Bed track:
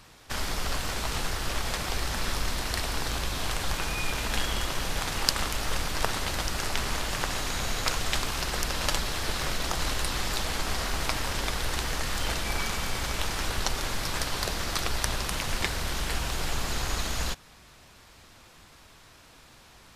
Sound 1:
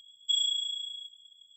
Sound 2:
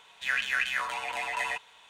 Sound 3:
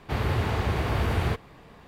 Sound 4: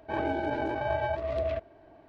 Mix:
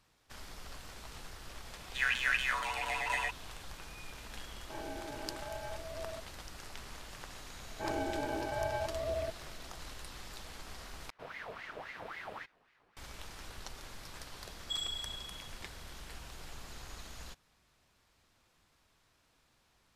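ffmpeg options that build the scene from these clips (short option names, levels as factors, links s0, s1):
-filter_complex "[4:a]asplit=2[s0][s1];[0:a]volume=0.126[s2];[3:a]aeval=exprs='val(0)*sin(2*PI*1300*n/s+1300*0.6/3.7*sin(2*PI*3.7*n/s))':c=same[s3];[s2]asplit=2[s4][s5];[s4]atrim=end=11.104[s6];[s3]atrim=end=1.87,asetpts=PTS-STARTPTS,volume=0.133[s7];[s5]atrim=start=12.966[s8];[2:a]atrim=end=1.89,asetpts=PTS-STARTPTS,volume=0.75,afade=t=in:d=0.004:c=hsin,afade=t=out:st=1.886:d=0.004:c=hsin,adelay=1730[s9];[s0]atrim=end=2.08,asetpts=PTS-STARTPTS,volume=0.2,afade=t=in:d=0.004:c=hsin,afade=t=out:st=2.076:d=0.004:c=hsin,adelay=203301S[s10];[s1]atrim=end=2.08,asetpts=PTS-STARTPTS,volume=0.501,afade=t=in:d=0.004:c=hsin,afade=t=out:st=2.076:d=0.004:c=hsin,adelay=7710[s11];[1:a]atrim=end=1.56,asetpts=PTS-STARTPTS,volume=0.316,afade=t=in:d=0.004:c=hsin,afade=t=out:st=1.556:d=0.004:c=hsin,adelay=14410[s12];[s6][s7]acrossfade=d=0.004:c1=hsin:c2=hsin[s13];[s13][s8]acrossfade=d=0.004:c1=hsin:c2=hsin[s14];[s14][s9][s10][s11][s12]amix=inputs=5:normalize=0"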